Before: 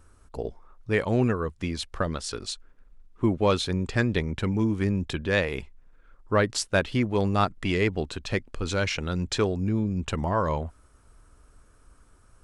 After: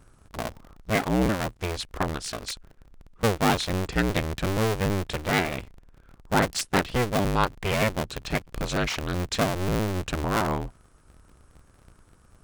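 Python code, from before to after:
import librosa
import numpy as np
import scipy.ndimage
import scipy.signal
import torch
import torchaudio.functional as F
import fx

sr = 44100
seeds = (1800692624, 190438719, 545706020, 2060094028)

y = fx.cycle_switch(x, sr, every=2, mode='inverted')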